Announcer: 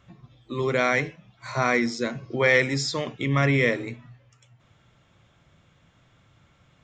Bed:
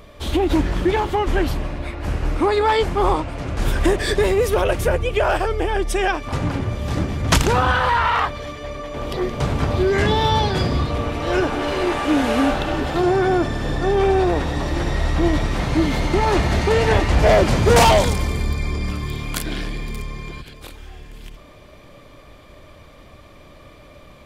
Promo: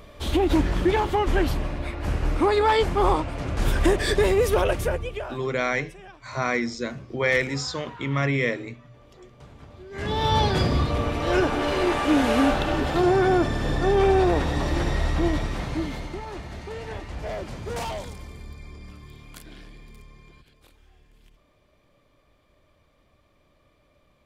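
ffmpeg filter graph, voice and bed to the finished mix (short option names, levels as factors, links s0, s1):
-filter_complex "[0:a]adelay=4800,volume=0.75[s0];[1:a]volume=11.9,afade=t=out:st=4.58:d=0.8:silence=0.0668344,afade=t=in:st=9.9:d=0.51:silence=0.0630957,afade=t=out:st=14.73:d=1.52:silence=0.149624[s1];[s0][s1]amix=inputs=2:normalize=0"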